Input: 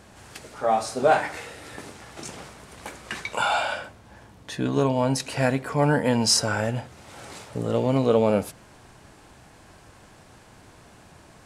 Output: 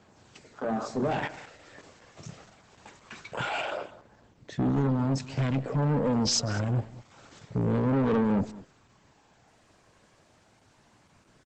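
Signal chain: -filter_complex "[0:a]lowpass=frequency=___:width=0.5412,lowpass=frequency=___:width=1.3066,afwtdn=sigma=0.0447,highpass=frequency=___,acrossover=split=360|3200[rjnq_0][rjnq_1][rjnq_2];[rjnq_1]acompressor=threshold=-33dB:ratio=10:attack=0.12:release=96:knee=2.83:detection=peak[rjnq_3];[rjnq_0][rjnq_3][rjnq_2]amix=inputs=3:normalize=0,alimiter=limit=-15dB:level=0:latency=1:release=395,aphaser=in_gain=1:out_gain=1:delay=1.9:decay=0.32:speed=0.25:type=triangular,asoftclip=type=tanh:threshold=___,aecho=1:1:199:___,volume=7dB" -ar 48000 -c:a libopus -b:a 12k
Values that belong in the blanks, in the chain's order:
9100, 9100, 100, -28.5dB, 0.126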